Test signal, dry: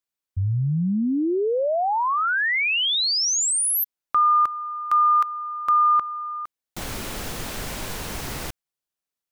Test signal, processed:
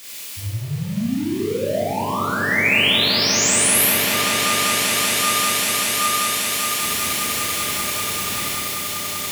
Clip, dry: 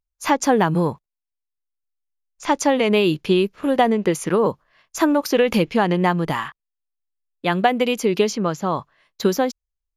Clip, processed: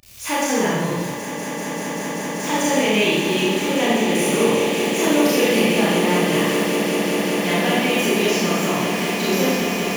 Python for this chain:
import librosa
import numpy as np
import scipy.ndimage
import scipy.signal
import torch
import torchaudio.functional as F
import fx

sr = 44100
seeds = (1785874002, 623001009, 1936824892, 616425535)

y = x + 0.5 * 10.0 ** (-30.0 / 20.0) * np.sign(x)
y = fx.dynamic_eq(y, sr, hz=4900.0, q=0.87, threshold_db=-37.0, ratio=4.0, max_db=-5)
y = scipy.signal.sosfilt(scipy.signal.butter(2, 85.0, 'highpass', fs=sr, output='sos'), y)
y = fx.high_shelf_res(y, sr, hz=1800.0, db=6.5, q=1.5)
y = fx.notch(y, sr, hz=760.0, q=16.0)
y = fx.comb_fb(y, sr, f0_hz=600.0, decay_s=0.51, harmonics='all', damping=0.0, mix_pct=70)
y = fx.echo_swell(y, sr, ms=194, loudest=8, wet_db=-11.0)
y = fx.rev_schroeder(y, sr, rt60_s=1.3, comb_ms=27, drr_db=-7.5)